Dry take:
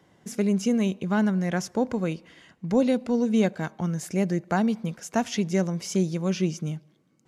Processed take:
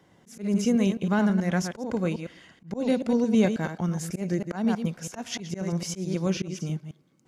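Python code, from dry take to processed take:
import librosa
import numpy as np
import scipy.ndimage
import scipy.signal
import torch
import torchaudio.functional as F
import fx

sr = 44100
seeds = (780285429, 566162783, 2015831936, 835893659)

y = fx.reverse_delay(x, sr, ms=108, wet_db=-7.5)
y = fx.auto_swell(y, sr, attack_ms=178.0)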